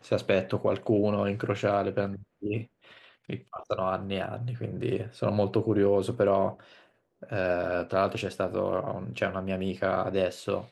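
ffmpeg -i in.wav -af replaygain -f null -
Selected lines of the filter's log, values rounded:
track_gain = +8.6 dB
track_peak = 0.203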